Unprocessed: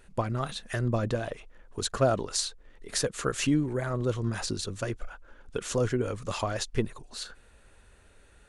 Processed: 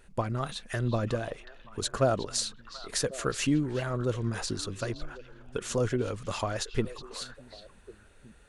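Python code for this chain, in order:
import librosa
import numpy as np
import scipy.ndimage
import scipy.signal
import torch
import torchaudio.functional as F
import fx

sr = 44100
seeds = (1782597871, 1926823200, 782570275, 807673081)

y = fx.echo_stepped(x, sr, ms=366, hz=3400.0, octaves=-1.4, feedback_pct=70, wet_db=-10.0)
y = F.gain(torch.from_numpy(y), -1.0).numpy()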